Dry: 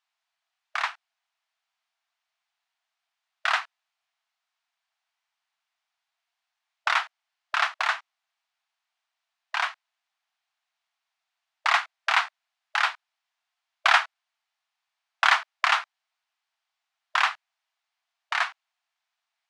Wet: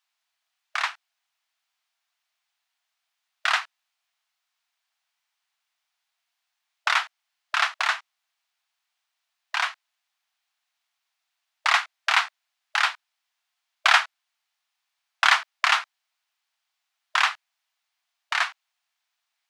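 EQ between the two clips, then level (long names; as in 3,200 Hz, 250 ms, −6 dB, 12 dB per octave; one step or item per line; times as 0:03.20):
spectral tilt +2 dB per octave
0.0 dB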